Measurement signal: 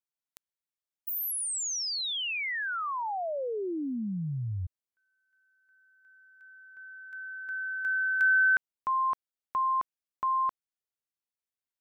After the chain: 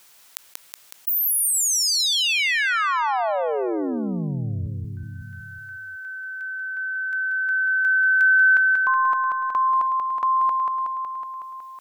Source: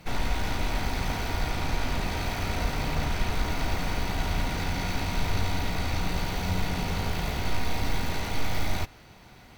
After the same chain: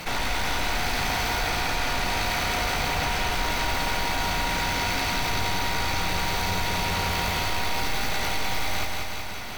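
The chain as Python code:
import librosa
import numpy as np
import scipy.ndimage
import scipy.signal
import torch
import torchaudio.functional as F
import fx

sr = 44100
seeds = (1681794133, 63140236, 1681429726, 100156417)

y = fx.low_shelf(x, sr, hz=420.0, db=-11.5)
y = fx.echo_feedback(y, sr, ms=185, feedback_pct=53, wet_db=-6)
y = fx.env_flatten(y, sr, amount_pct=50)
y = F.gain(torch.from_numpy(y), 4.0).numpy()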